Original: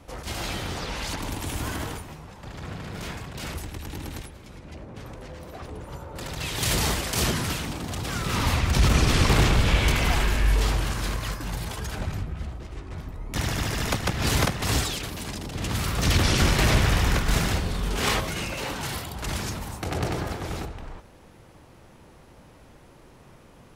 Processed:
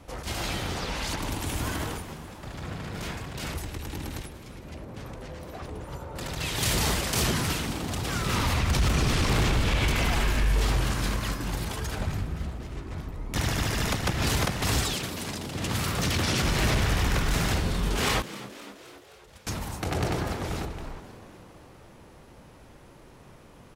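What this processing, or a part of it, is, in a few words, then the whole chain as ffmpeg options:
limiter into clipper: -filter_complex "[0:a]alimiter=limit=-15.5dB:level=0:latency=1:release=53,asoftclip=type=hard:threshold=-18dB,asettb=1/sr,asplit=3[a][b][c];[a]atrim=end=14.944[d];[b]atrim=start=14.94:end=16.44,asetpts=PTS-STARTPTS,afade=t=in:d=0.004:c=qsin,afade=t=out:st=1.496:d=0.004:c=qsin,highpass=83[e];[c]atrim=start=16.436[f];[d][e]acrossfade=d=0.004:c1=hsin:c2=qsin[g];[g][f]acrossfade=d=0.004:c1=qsin:c2=hsin,asettb=1/sr,asplit=3[h][i][j];[h]atrim=end=18.224[k];[i]atrim=start=18.22:end=19.47,asetpts=PTS-STARTPTS,afade=t=in:d=0.004:c=qsin,afade=t=out:st=1.246:d=0.004:c=qsin,agate=range=-27dB:threshold=-24dB:ratio=16:detection=peak[l];[j]atrim=start=19.466[m];[k][l]acrossfade=d=0.004:c1=hsin:c2=qsin[n];[n][m]acrossfade=d=0.004:c1=qsin:c2=hsin,asplit=7[o][p][q][r][s][t][u];[p]adelay=260,afreqshift=78,volume=-16dB[v];[q]adelay=520,afreqshift=156,volume=-20.3dB[w];[r]adelay=780,afreqshift=234,volume=-24.6dB[x];[s]adelay=1040,afreqshift=312,volume=-28.9dB[y];[t]adelay=1300,afreqshift=390,volume=-33.2dB[z];[u]adelay=1560,afreqshift=468,volume=-37.5dB[aa];[o][v][w][x][y][z][aa]amix=inputs=7:normalize=0"

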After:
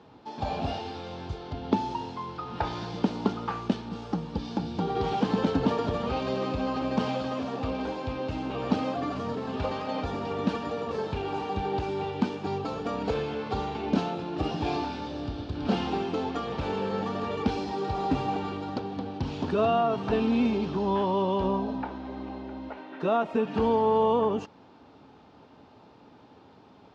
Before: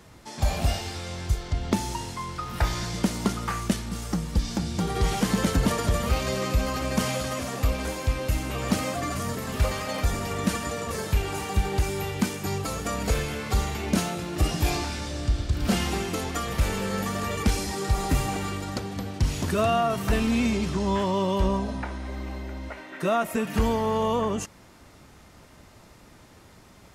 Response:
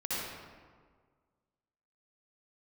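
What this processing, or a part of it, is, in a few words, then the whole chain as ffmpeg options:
guitar cabinet: -af "highpass=110,equalizer=f=270:t=q:w=4:g=8,equalizer=f=440:t=q:w=4:g=7,equalizer=f=840:t=q:w=4:g=9,equalizer=f=2k:t=q:w=4:g=-9,lowpass=f=4.2k:w=0.5412,lowpass=f=4.2k:w=1.3066,volume=-4dB"

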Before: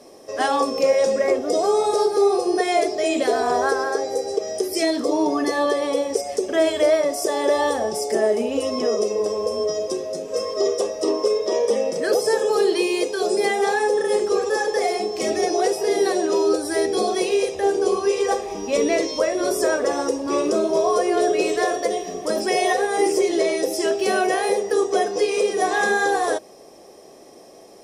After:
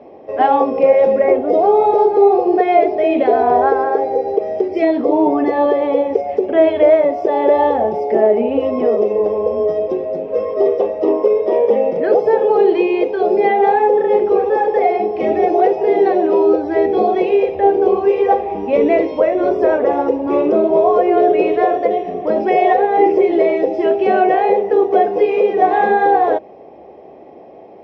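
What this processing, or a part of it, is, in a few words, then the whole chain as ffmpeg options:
bass cabinet: -af "highpass=69,equalizer=f=69:t=q:w=4:g=9,equalizer=f=800:t=q:w=4:g=5,equalizer=f=1.2k:t=q:w=4:g=-8,equalizer=f=1.7k:t=q:w=4:g=-8,lowpass=f=2.3k:w=0.5412,lowpass=f=2.3k:w=1.3066,volume=6.5dB"

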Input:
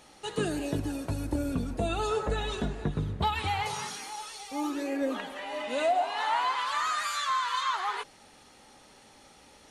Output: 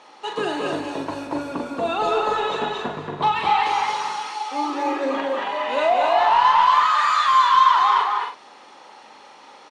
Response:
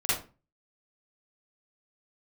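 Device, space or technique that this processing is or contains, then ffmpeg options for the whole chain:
intercom: -filter_complex "[0:a]asettb=1/sr,asplit=3[a][b][c];[a]atrim=end=6.424[d];[b]atrim=start=6.42:end=7.65,asetpts=PTS-STARTPTS,afade=t=in:d=0.004:c=qsin,afade=t=out:st=1.226:d=0.004:c=qsin,highpass=570[e];[c]atrim=start=7.646[f];[d][e]acrossfade=d=0.004:c1=hsin:c2=qsin[g];[g][f]acrossfade=d=0.004:c1=qsin:c2=hsin,highpass=340,lowpass=4.5k,equalizer=f=1k:t=o:w=0.51:g=9,asoftclip=type=tanh:threshold=-18dB,asplit=2[h][i];[i]adelay=41,volume=-6.5dB[j];[h][j]amix=inputs=2:normalize=0,aecho=1:1:227.4|274.1:0.708|0.447,volume=6dB"

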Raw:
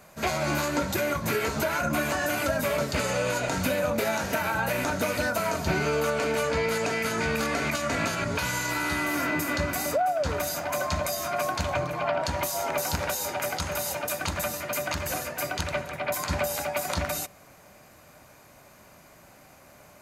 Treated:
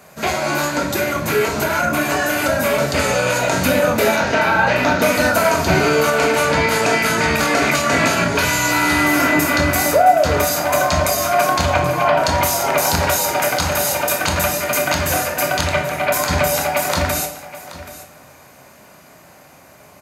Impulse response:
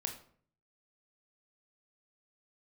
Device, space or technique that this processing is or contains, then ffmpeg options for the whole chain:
far laptop microphone: -filter_complex "[0:a]asettb=1/sr,asplit=3[a][b][c];[a]atrim=end=4.164[d];[b]atrim=start=4.16:end=5.02,asetpts=PTS-STARTPTS,afade=t=in:d=0.004:c=qsin,afade=t=out:st=0.856:d=0.004:c=qsin,lowpass=f=5.4k:w=0.5412,lowpass=f=5.4k:w=1.3066[e];[c]atrim=start=5.016[f];[d][e]acrossfade=d=0.004:c1=hsin:c2=qsin[g];[g][f]acrossfade=d=0.004:c1=qsin:c2=hsin[h];[1:a]atrim=start_sample=2205[i];[h][i]afir=irnorm=-1:irlink=0,highpass=f=120:p=1,dynaudnorm=f=720:g=9:m=4dB,aecho=1:1:778:0.158,volume=8dB"

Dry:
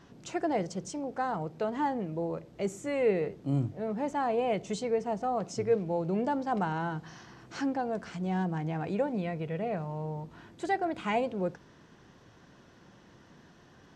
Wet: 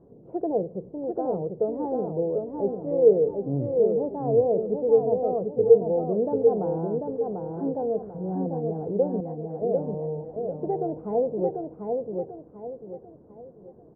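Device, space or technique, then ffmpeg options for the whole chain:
under water: -filter_complex "[0:a]asettb=1/sr,asplit=3[a][b][c];[a]atrim=end=9.204[d];[b]atrim=start=9.2:end=9.62,asetpts=PTS-STARTPTS,afade=t=in:d=0.004:c=qsin,afade=t=out:st=0.416:d=0.004:c=qsin,highpass=750[e];[c]atrim=start=9.616[f];[d][e]acrossfade=d=0.004:c1=hsin:c2=qsin[g];[g][f]acrossfade=d=0.004:c1=qsin:c2=hsin,lowpass=f=720:w=0.5412,lowpass=f=720:w=1.3066,equalizer=f=460:t=o:w=0.56:g=11,aecho=1:1:743|1486|2229|2972|3715:0.631|0.233|0.0864|0.032|0.0118"

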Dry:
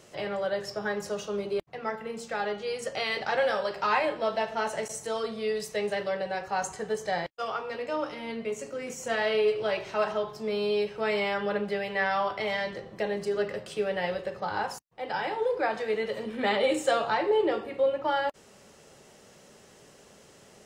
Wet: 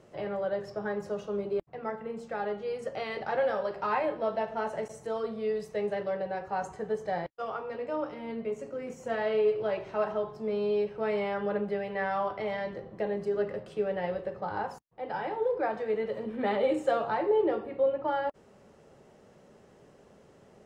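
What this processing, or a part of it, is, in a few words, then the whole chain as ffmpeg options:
through cloth: -af "highshelf=f=2.1k:g=-17"

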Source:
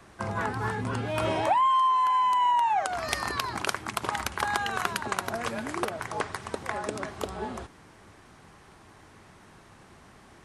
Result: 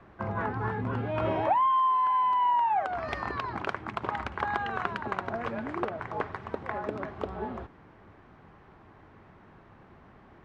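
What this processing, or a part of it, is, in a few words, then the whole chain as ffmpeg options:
phone in a pocket: -af "lowpass=3k,highshelf=f=2.5k:g=-10.5"

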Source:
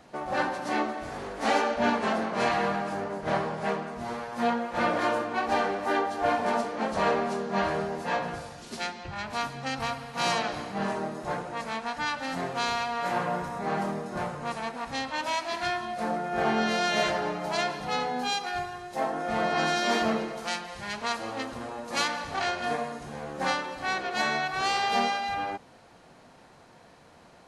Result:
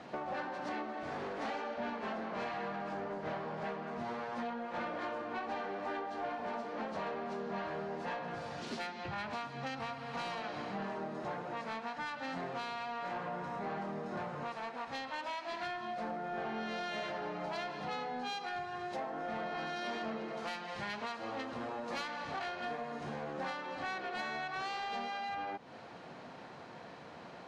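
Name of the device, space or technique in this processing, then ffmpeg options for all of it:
AM radio: -filter_complex "[0:a]highpass=120,lowpass=4.2k,acompressor=threshold=-41dB:ratio=6,asoftclip=type=tanh:threshold=-34.5dB,asettb=1/sr,asplit=3[a][b][c];[a]atrim=end=14.434[d];[b]atrim=start=14.43:end=15.45,asetpts=PTS-STARTPTS,afade=t=in:d=0.004:c=qsin,afade=t=out:st=1.016:d=0.004:c=qsin,equalizer=f=170:w=0.84:g=-6[e];[c]atrim=start=15.446[f];[d][e]acrossfade=d=0.004:c1=hsin:c2=qsin[g];[g][f]acrossfade=d=0.004:c1=qsin:c2=hsin,volume=4.5dB"

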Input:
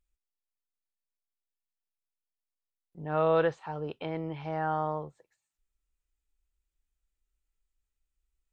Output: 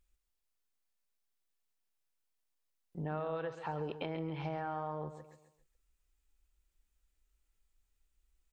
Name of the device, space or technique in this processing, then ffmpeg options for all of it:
serial compression, peaks first: -af "acompressor=threshold=-33dB:ratio=6,acompressor=threshold=-42dB:ratio=3,aecho=1:1:137|274|411|548:0.282|0.11|0.0429|0.0167,volume=5dB"

